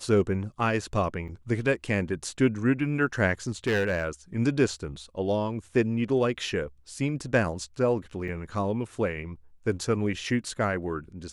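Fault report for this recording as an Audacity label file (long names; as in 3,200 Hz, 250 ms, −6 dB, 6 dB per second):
1.280000	1.290000	drop-out 6.6 ms
3.670000	4.050000	clipping −20.5 dBFS
8.280000	8.280000	drop-out 4 ms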